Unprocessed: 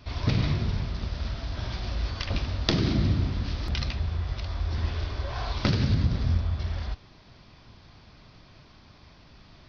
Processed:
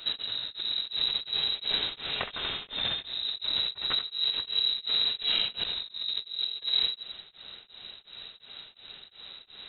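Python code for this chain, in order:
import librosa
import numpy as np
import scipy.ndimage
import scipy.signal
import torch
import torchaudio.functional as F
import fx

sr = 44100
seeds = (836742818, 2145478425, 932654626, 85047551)

y = fx.highpass(x, sr, hz=fx.line((1.74, 86.0), (3.05, 260.0)), slope=24, at=(1.74, 3.05), fade=0.02)
y = fx.over_compress(y, sr, threshold_db=-32.0, ratio=-1.0)
y = fx.echo_feedback(y, sr, ms=86, feedback_pct=44, wet_db=-9.0)
y = fx.freq_invert(y, sr, carrier_hz=3900)
y = y * np.abs(np.cos(np.pi * 2.8 * np.arange(len(y)) / sr))
y = F.gain(torch.from_numpy(y), 2.0).numpy()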